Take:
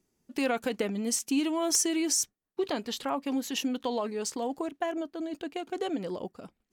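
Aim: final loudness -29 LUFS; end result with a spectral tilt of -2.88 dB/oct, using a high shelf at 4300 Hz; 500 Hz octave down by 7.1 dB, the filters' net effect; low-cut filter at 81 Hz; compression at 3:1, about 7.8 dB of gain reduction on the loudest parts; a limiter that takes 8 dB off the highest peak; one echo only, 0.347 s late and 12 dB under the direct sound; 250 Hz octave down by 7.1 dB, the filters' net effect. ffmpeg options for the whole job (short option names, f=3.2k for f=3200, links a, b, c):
-af "highpass=81,equalizer=f=250:t=o:g=-6,equalizer=f=500:t=o:g=-8,highshelf=f=4.3k:g=6.5,acompressor=threshold=-29dB:ratio=3,alimiter=level_in=0.5dB:limit=-24dB:level=0:latency=1,volume=-0.5dB,aecho=1:1:347:0.251,volume=7.5dB"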